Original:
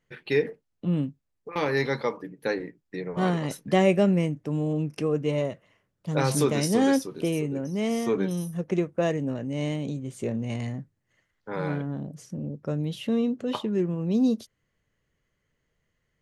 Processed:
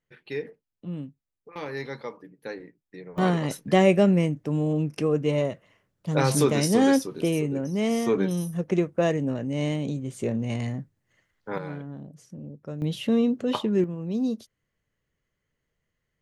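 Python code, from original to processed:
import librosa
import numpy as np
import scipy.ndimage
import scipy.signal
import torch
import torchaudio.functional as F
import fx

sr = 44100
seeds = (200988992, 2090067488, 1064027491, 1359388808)

y = fx.gain(x, sr, db=fx.steps((0.0, -8.5), (3.18, 2.0), (11.58, -6.5), (12.82, 3.0), (13.84, -4.0)))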